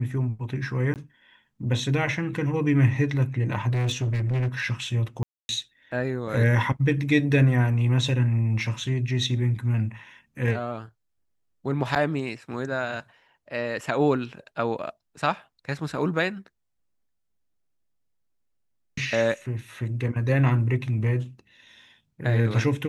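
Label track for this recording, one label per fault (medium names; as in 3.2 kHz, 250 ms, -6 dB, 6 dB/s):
0.940000	0.960000	dropout 18 ms
3.710000	4.640000	clipped -22 dBFS
5.230000	5.490000	dropout 261 ms
11.950000	11.960000	dropout 8.5 ms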